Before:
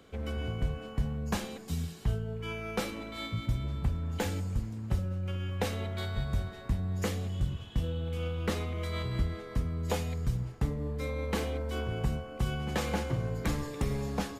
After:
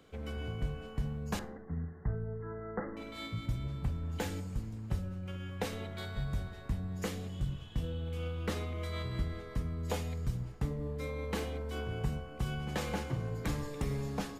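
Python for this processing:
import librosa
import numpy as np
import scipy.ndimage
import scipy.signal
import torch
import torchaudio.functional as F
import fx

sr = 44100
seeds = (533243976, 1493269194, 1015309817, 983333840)

y = fx.brickwall_lowpass(x, sr, high_hz=2100.0, at=(1.39, 2.97))
y = fx.room_shoebox(y, sr, seeds[0], volume_m3=710.0, walls='furnished', distance_m=0.46)
y = F.gain(torch.from_numpy(y), -4.0).numpy()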